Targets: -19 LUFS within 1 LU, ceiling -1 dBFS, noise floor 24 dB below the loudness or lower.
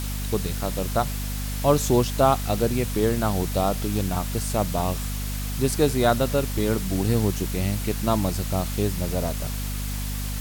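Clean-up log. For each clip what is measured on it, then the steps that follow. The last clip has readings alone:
hum 50 Hz; highest harmonic 250 Hz; hum level -27 dBFS; noise floor -29 dBFS; noise floor target -49 dBFS; loudness -24.5 LUFS; peak level -5.5 dBFS; loudness target -19.0 LUFS
-> de-hum 50 Hz, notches 5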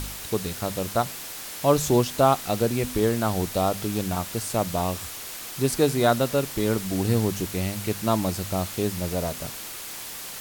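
hum not found; noise floor -37 dBFS; noise floor target -50 dBFS
-> noise print and reduce 13 dB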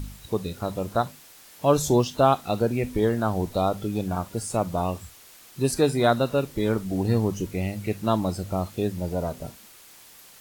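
noise floor -50 dBFS; loudness -25.5 LUFS; peak level -6.5 dBFS; loudness target -19.0 LUFS
-> trim +6.5 dB; peak limiter -1 dBFS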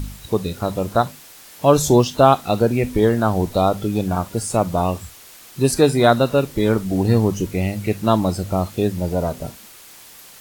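loudness -19.0 LUFS; peak level -1.0 dBFS; noise floor -43 dBFS

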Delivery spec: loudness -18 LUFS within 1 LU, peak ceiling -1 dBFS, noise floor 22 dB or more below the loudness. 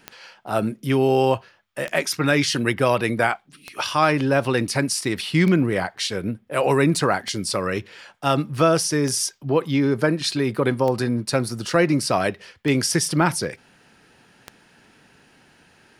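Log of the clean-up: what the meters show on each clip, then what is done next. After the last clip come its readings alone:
clicks found 9; loudness -21.5 LUFS; peak level -5.0 dBFS; loudness target -18.0 LUFS
-> de-click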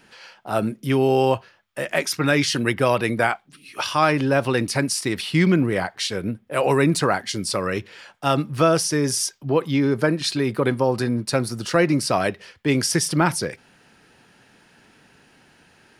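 clicks found 0; loudness -21.5 LUFS; peak level -5.0 dBFS; loudness target -18.0 LUFS
-> trim +3.5 dB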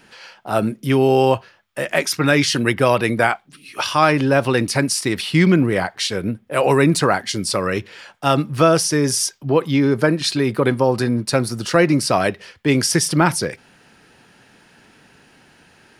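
loudness -18.0 LUFS; peak level -1.5 dBFS; noise floor -53 dBFS

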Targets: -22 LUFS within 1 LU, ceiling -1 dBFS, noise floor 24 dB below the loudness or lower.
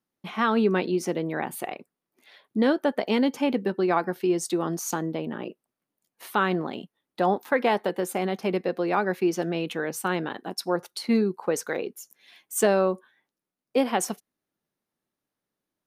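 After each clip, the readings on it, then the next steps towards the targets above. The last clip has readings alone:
loudness -26.5 LUFS; peak level -10.5 dBFS; loudness target -22.0 LUFS
-> trim +4.5 dB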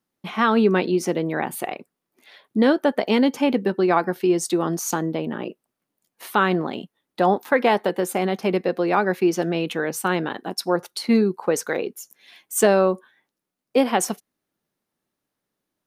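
loudness -22.0 LUFS; peak level -6.0 dBFS; noise floor -83 dBFS

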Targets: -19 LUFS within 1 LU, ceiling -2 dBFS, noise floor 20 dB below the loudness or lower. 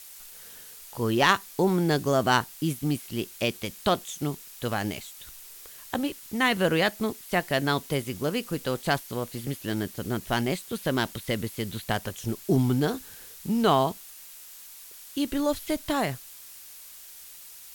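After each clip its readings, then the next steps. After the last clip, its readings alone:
noise floor -46 dBFS; noise floor target -48 dBFS; loudness -27.5 LUFS; peak level -6.5 dBFS; loudness target -19.0 LUFS
-> noise print and reduce 6 dB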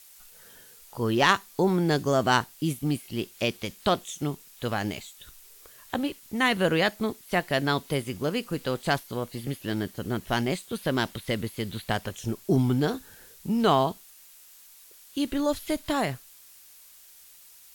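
noise floor -52 dBFS; loudness -27.5 LUFS; peak level -6.5 dBFS; loudness target -19.0 LUFS
-> trim +8.5 dB; peak limiter -2 dBFS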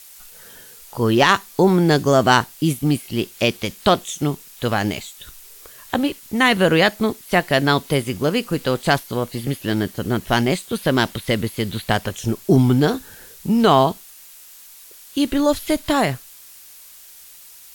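loudness -19.5 LUFS; peak level -2.0 dBFS; noise floor -44 dBFS

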